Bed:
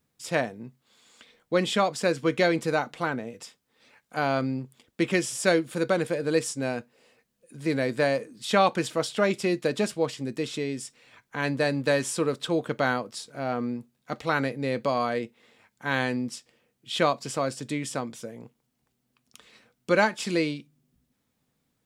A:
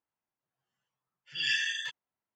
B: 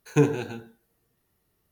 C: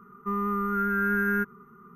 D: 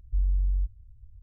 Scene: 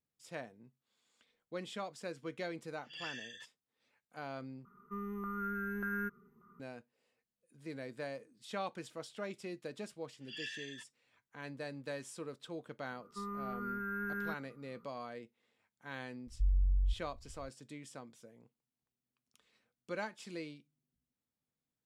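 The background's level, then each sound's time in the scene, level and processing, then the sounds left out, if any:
bed −18.5 dB
0:01.55: mix in A −16 dB
0:04.65: overwrite with C −11 dB + auto-filter notch saw up 1.7 Hz 460–1,500 Hz
0:08.93: mix in A −15 dB
0:12.90: mix in C −13.5 dB + parametric band 6,100 Hz −3 dB
0:16.27: mix in D −5 dB
not used: B

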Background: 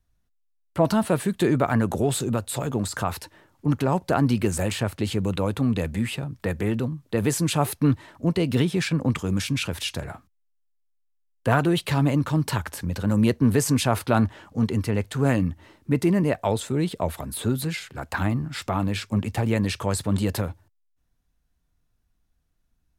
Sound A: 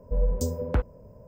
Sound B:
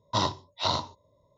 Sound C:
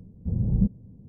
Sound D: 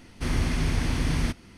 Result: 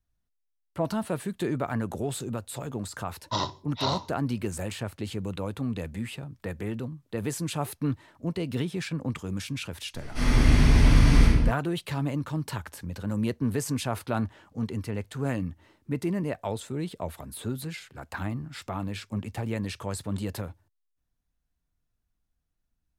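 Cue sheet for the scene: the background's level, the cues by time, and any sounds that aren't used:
background −8 dB
0:03.18: mix in B −2.5 dB
0:09.94: mix in D −9.5 dB + rectangular room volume 450 cubic metres, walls mixed, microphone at 6.7 metres
not used: A, C

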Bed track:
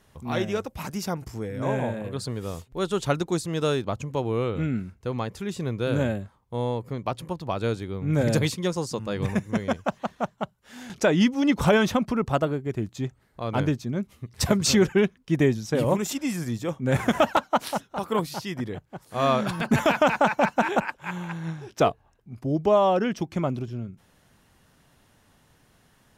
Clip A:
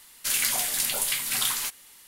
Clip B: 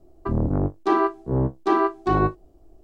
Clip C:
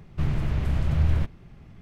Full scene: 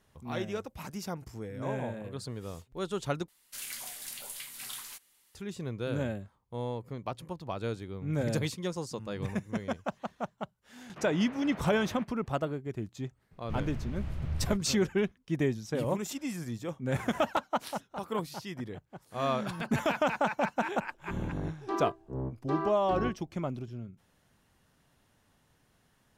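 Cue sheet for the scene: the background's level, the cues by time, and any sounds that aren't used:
bed track −8 dB
0:03.28: overwrite with A −15.5 dB
0:10.78: mix in C −4.5 dB + band-pass filter 460–2,300 Hz
0:13.31: mix in C −12 dB
0:20.82: mix in B −13.5 dB

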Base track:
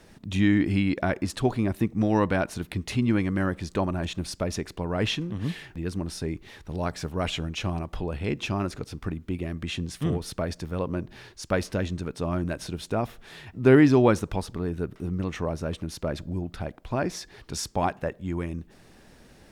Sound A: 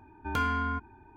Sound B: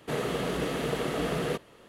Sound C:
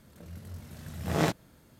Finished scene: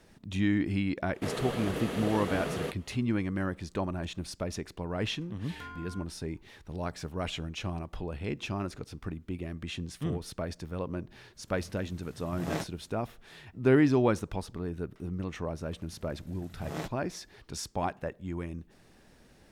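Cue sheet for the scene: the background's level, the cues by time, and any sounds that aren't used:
base track −6 dB
0:01.14: mix in B −4.5 dB
0:05.25: mix in A −16 dB
0:11.32: mix in C −7.5 dB, fades 0.05 s
0:15.56: mix in C −10.5 dB

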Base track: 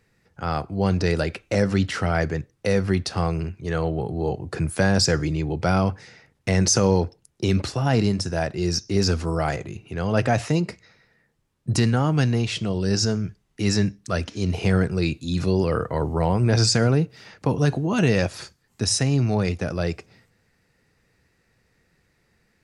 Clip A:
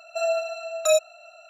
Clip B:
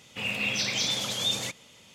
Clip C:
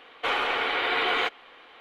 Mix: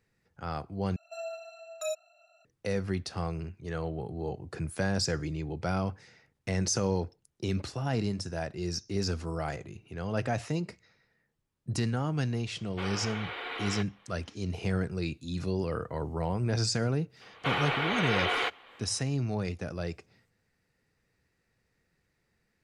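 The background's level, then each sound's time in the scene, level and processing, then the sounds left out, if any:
base track −10 dB
0:00.96: overwrite with A −14.5 dB
0:12.54: mix in C −12.5 dB
0:17.21: mix in C −4 dB
not used: B

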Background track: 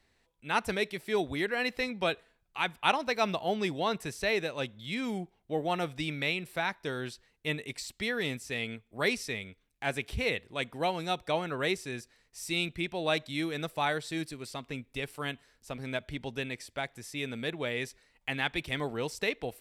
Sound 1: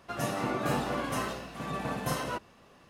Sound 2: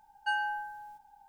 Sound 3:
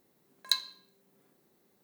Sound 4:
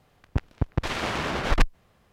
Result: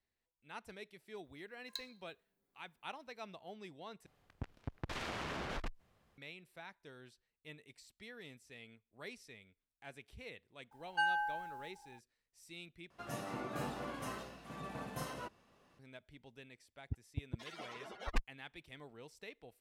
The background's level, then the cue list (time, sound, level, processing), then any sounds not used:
background track −20 dB
0:01.24: mix in 3 −17.5 dB
0:04.06: overwrite with 4 −10.5 dB + downward compressor, threshold −26 dBFS
0:10.71: mix in 2 −2 dB
0:12.90: overwrite with 1 −11 dB
0:16.56: mix in 4 −12 dB + spectral dynamics exaggerated over time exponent 3

